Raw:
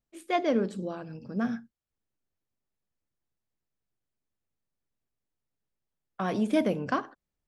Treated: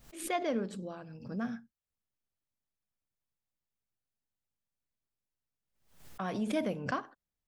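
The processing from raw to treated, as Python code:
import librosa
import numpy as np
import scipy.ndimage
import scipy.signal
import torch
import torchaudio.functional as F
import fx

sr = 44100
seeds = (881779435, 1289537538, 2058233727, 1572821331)

y = fx.peak_eq(x, sr, hz=350.0, db=-3.5, octaves=0.97)
y = fx.pre_swell(y, sr, db_per_s=96.0)
y = y * 10.0 ** (-5.5 / 20.0)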